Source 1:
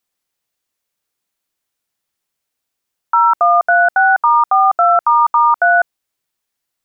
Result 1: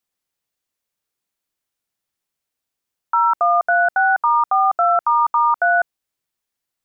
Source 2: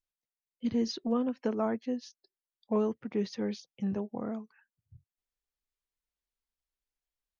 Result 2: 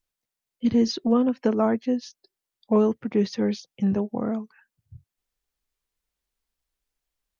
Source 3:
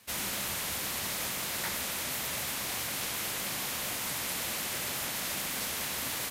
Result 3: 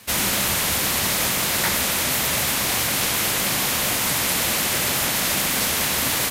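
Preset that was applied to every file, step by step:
low-shelf EQ 340 Hz +2.5 dB
normalise the peak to −9 dBFS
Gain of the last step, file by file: −5.0, +7.5, +12.5 decibels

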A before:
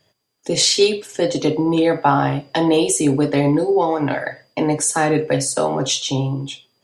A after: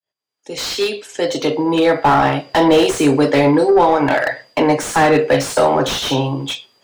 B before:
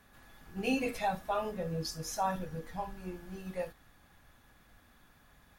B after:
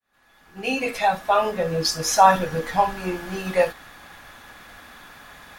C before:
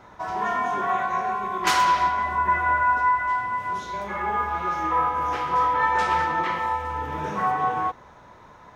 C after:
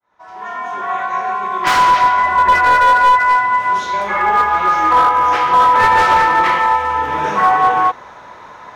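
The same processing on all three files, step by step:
fade in at the beginning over 2.54 s
mid-hump overdrive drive 14 dB, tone 5,200 Hz, clips at −4 dBFS
slew-rate limiting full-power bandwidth 270 Hz
normalise the peak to −2 dBFS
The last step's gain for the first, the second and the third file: +2.5, +13.0, +5.5 decibels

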